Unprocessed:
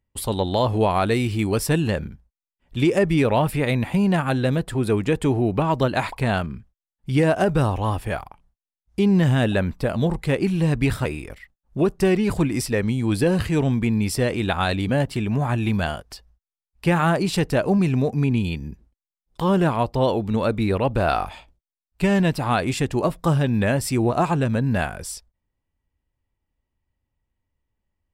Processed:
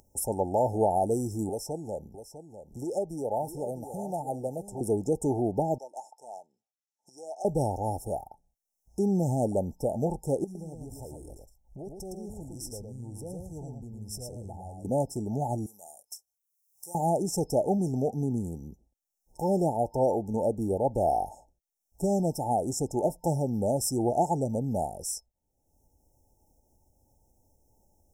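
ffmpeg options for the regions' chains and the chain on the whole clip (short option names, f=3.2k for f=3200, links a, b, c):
-filter_complex "[0:a]asettb=1/sr,asplit=3[a][b][c];[a]atrim=end=1.494[d];[b]atrim=start=1.49:end=4.81,asetpts=PTS-STARTPTS,afade=t=in:d=0.004:c=qsin,afade=t=out:st=3.316:d=0.004:c=qsin,acrossover=split=560|1500|7100[e][f][g][h];[e]acompressor=threshold=-32dB:ratio=3[i];[f]acompressor=threshold=-25dB:ratio=3[j];[g]acompressor=threshold=-42dB:ratio=3[k];[h]acompressor=threshold=-52dB:ratio=3[l];[i][j][k][l]amix=inputs=4:normalize=0,aecho=1:1:651:0.266,atrim=end_sample=146412[m];[c]atrim=start=4.806[n];[d][m]acrossfade=d=0.004:c1=hsin:c2=qsin[o];[o][n]acrossfade=d=0.004:c1=qsin:c2=hsin,asettb=1/sr,asplit=3[p][q][r];[p]atrim=end=5.784[s];[q]atrim=start=5.78:end=7.45,asetpts=PTS-STARTPTS,afade=t=in:d=0.004:c=qsin,afade=t=out:st=1.666:d=0.004:c=qsin,highpass=1.5k,adynamicsmooth=sensitivity=1:basefreq=4.7k[t];[r]atrim=start=7.446[u];[s][t]acrossfade=d=0.004:c1=hsin:c2=qsin[v];[v][u]acrossfade=d=0.004:c1=qsin:c2=hsin,asettb=1/sr,asplit=3[w][x][y];[w]atrim=end=10.444[z];[x]atrim=start=10.44:end=14.85,asetpts=PTS-STARTPTS,afade=t=in:d=0.004:c=qsin,afade=t=out:st=4.406:d=0.004:c=qsin,asubboost=boost=6.5:cutoff=120,acompressor=threshold=-31dB:ratio=6:attack=3.2:release=140:knee=1:detection=peak,aecho=1:1:111:0.596,atrim=end_sample=194481[aa];[y]atrim=start=14.846[ab];[z][aa]acrossfade=d=0.004:c1=hsin:c2=qsin[ac];[ac][ab]acrossfade=d=0.004:c1=qsin:c2=hsin,asettb=1/sr,asplit=3[ad][ae][af];[ad]atrim=end=15.664[ag];[ae]atrim=start=15.66:end=16.95,asetpts=PTS-STARTPTS,afade=t=in:d=0.004:c=qsin,afade=t=out:st=1.286:d=0.004:c=qsin,aderivative,asplit=2[ah][ai];[ai]adelay=29,volume=-13.5dB[aj];[ah][aj]amix=inputs=2:normalize=0,atrim=end_sample=56889[ak];[af]atrim=start=16.946[al];[ag][ak]acrossfade=d=0.004:c1=hsin:c2=qsin[am];[am][al]acrossfade=d=0.004:c1=qsin:c2=hsin,acompressor=mode=upward:threshold=-37dB:ratio=2.5,lowshelf=f=350:g=-12,afftfilt=real='re*(1-between(b*sr/4096,900,5200))':imag='im*(1-between(b*sr/4096,900,5200))':win_size=4096:overlap=0.75"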